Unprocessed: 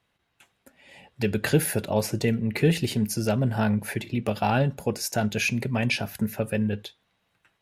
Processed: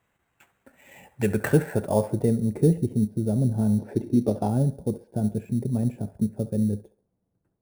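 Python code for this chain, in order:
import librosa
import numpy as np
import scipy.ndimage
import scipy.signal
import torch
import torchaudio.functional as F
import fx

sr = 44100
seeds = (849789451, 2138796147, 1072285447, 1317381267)

p1 = fx.filter_sweep_lowpass(x, sr, from_hz=2200.0, to_hz=350.0, start_s=1.07, end_s=2.95, q=0.89)
p2 = p1 + fx.echo_wet_bandpass(p1, sr, ms=68, feedback_pct=36, hz=970.0, wet_db=-12, dry=0)
p3 = fx.sample_hold(p2, sr, seeds[0], rate_hz=10000.0, jitter_pct=0)
p4 = fx.spec_box(p3, sr, start_s=3.79, length_s=0.7, low_hz=220.0, high_hz=6200.0, gain_db=7)
y = p4 * 10.0 ** (1.5 / 20.0)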